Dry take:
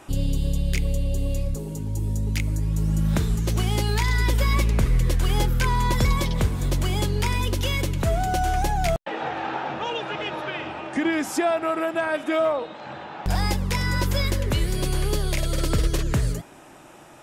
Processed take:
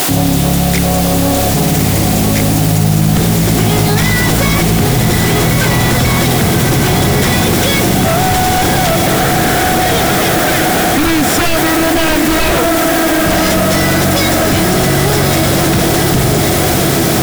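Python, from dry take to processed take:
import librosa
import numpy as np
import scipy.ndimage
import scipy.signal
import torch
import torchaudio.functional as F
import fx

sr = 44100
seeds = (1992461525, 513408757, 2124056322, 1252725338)

p1 = fx.lower_of_two(x, sr, delay_ms=0.55)
p2 = fx.quant_dither(p1, sr, seeds[0], bits=6, dither='triangular')
p3 = scipy.signal.sosfilt(scipy.signal.butter(2, 230.0, 'highpass', fs=sr, output='sos'), p2)
p4 = fx.peak_eq(p3, sr, hz=730.0, db=11.5, octaves=0.25)
p5 = p4 + fx.echo_diffused(p4, sr, ms=1150, feedback_pct=60, wet_db=-4.0, dry=0)
p6 = fx.fold_sine(p5, sr, drive_db=19, ceiling_db=-3.5)
p7 = fx.low_shelf(p6, sr, hz=310.0, db=11.5)
p8 = fx.env_flatten(p7, sr, amount_pct=70)
y = p8 * librosa.db_to_amplitude(-10.0)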